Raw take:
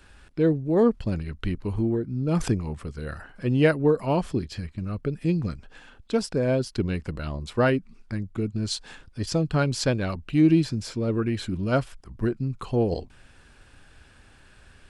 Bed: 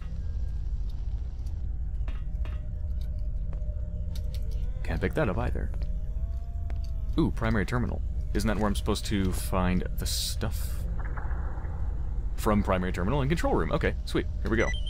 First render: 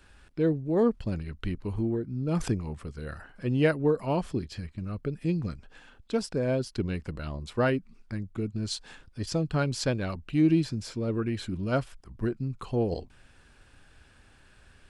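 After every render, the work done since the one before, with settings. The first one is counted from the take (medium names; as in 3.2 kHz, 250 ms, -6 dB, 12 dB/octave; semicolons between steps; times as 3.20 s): trim -4 dB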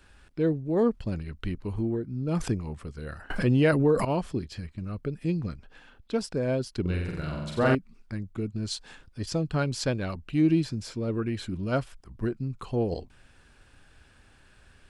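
3.30–4.05 s: level flattener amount 70%; 5.42–6.21 s: peaking EQ 7.7 kHz -5.5 dB; 6.81–7.75 s: flutter echo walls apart 7.8 m, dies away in 1.1 s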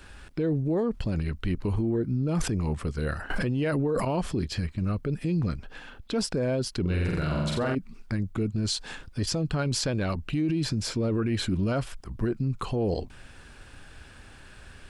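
in parallel at +2 dB: compressor with a negative ratio -29 dBFS; on the sum: peak limiter -19.5 dBFS, peak gain reduction 9.5 dB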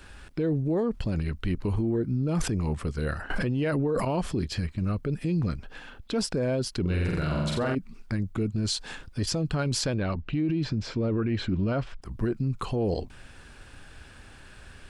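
3.12–4.00 s: treble shelf 8 kHz -4.5 dB; 9.94–12.02 s: distance through air 160 m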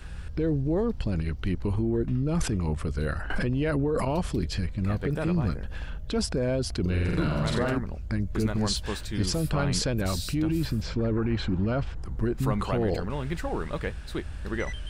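add bed -5 dB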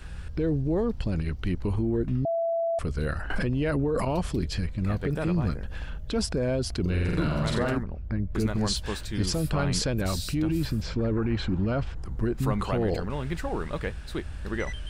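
2.25–2.79 s: bleep 668 Hz -23.5 dBFS; 7.83–8.35 s: tape spacing loss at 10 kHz 28 dB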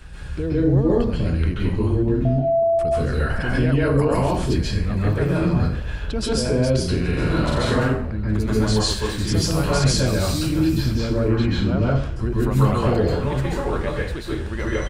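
delay 816 ms -23.5 dB; plate-style reverb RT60 0.53 s, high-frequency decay 0.85×, pre-delay 120 ms, DRR -6 dB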